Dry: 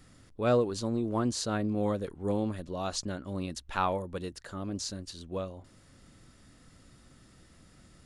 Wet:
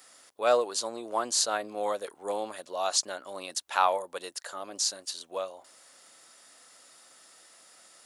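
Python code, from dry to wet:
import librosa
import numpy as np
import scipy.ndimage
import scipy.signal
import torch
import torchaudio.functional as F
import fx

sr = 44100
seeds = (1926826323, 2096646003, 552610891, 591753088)

y = fx.highpass_res(x, sr, hz=680.0, q=1.5)
y = fx.high_shelf(y, sr, hz=4500.0, db=11.5)
y = y * 10.0 ** (2.0 / 20.0)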